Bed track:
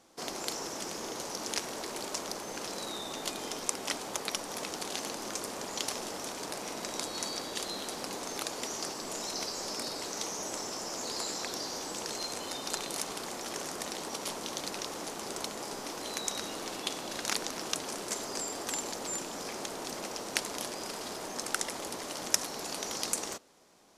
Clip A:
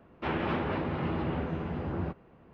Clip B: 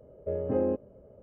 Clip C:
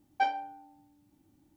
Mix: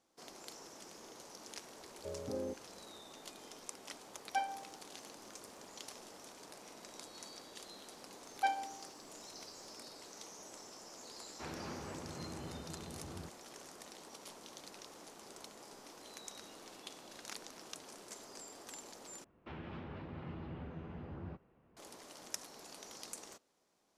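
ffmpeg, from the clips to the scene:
-filter_complex "[3:a]asplit=2[a][b];[1:a]asplit=2[c][d];[0:a]volume=-15dB[e];[d]acrossover=split=210|3900[f][g][h];[g]acompressor=threshold=-38dB:ratio=6:attack=15:release=126:knee=2.83:detection=peak[i];[f][i][h]amix=inputs=3:normalize=0[j];[e]asplit=2[k][l];[k]atrim=end=19.244[m];[j]atrim=end=2.53,asetpts=PTS-STARTPTS,volume=-12dB[n];[l]atrim=start=21.766[o];[2:a]atrim=end=1.22,asetpts=PTS-STARTPTS,volume=-13dB,afade=t=in:d=0.004:c=hsin,afade=t=out:st=1.216:d=0.004:c=hsin,adelay=1780[p];[a]atrim=end=1.56,asetpts=PTS-STARTPTS,volume=-7.5dB,afade=t=in:d=0.004:c=hsin,afade=t=out:st=1.556:d=0.004:c=hsin,adelay=4150[q];[b]atrim=end=1.56,asetpts=PTS-STARTPTS,volume=-5dB,afade=t=in:d=0.004:c=hsin,afade=t=out:st=1.556:d=0.004:c=hsin,adelay=8230[r];[c]atrim=end=2.53,asetpts=PTS-STARTPTS,volume=-15dB,afade=t=in:d=0.004:c=hsin,afade=t=out:st=2.526:d=0.004:c=hsin,adelay=11170[s];[m][n]acrossfade=d=0.004:c1=hsin:c2=hsin[t];[t][o]acrossfade=d=0.004:c1=hsin:c2=hsin[u];[u][p][q][r][s]amix=inputs=5:normalize=0"

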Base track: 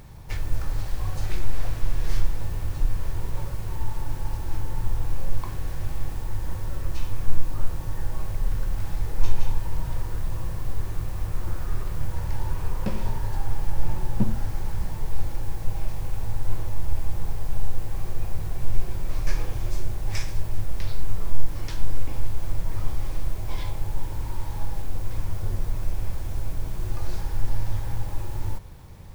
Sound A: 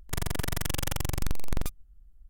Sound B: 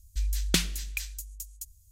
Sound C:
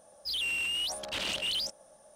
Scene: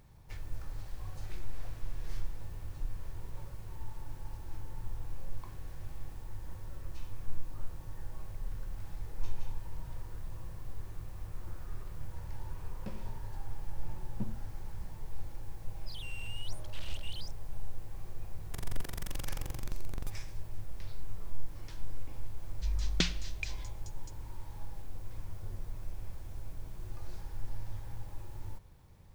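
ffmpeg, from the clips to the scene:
-filter_complex "[0:a]volume=-14dB[a];[2:a]lowpass=f=5.8k:w=0.5412,lowpass=f=5.8k:w=1.3066[b];[3:a]atrim=end=2.15,asetpts=PTS-STARTPTS,volume=-15.5dB,afade=t=in:d=0.004:c=hsin,afade=t=out:st=2.146:d=0.004:c=hsin,adelay=15610[c];[1:a]atrim=end=2.29,asetpts=PTS-STARTPTS,volume=-11.5dB,afade=t=in:d=0.004:c=hsin,afade=t=out:st=2.286:d=0.004:c=hsin,adelay=18410[d];[b]atrim=end=1.91,asetpts=PTS-STARTPTS,volume=-4.5dB,afade=t=in:d=0.004:c=hsin,afade=t=out:st=1.906:d=0.004:c=hsin,adelay=22460[e];[a][c][d][e]amix=inputs=4:normalize=0"

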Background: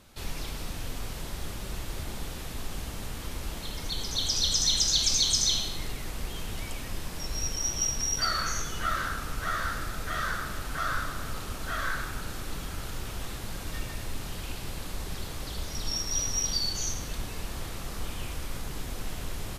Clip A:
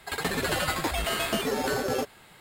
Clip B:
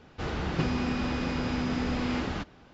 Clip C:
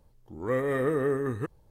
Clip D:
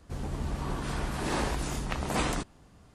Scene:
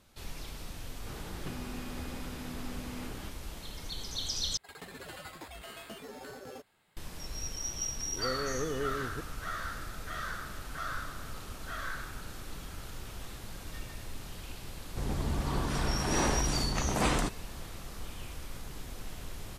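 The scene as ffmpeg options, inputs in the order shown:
-filter_complex "[0:a]volume=-7dB[a];[3:a]highpass=61[b];[4:a]aeval=exprs='0.251*sin(PI/2*1.58*val(0)/0.251)':c=same[c];[a]asplit=2[d][e];[d]atrim=end=4.574[f];[1:a]atrim=end=2.4,asetpts=PTS-STARTPTS,volume=-18dB[g];[e]atrim=start=6.966[h];[2:a]atrim=end=2.73,asetpts=PTS-STARTPTS,volume=-13dB,afade=t=in:d=0.004:c=hsin,afade=t=out:st=2.726:d=0.004:c=hsin,adelay=870[i];[b]atrim=end=1.7,asetpts=PTS-STARTPTS,volume=-8.5dB,afade=t=in:d=0.004:c=hsin,afade=t=out:st=1.696:d=0.004:c=hsin,adelay=7750[j];[c]atrim=end=2.94,asetpts=PTS-STARTPTS,volume=-6.5dB,afade=t=in:d=0.004:c=hsin,afade=t=out:st=2.936:d=0.004:c=hsin,adelay=14860[k];[f][g]acrossfade=d=0.004:c1=hsin:c2=hsin[l];[l][h]acrossfade=d=0.004:c1=hsin:c2=hsin[m];[m][i][j][k]amix=inputs=4:normalize=0"

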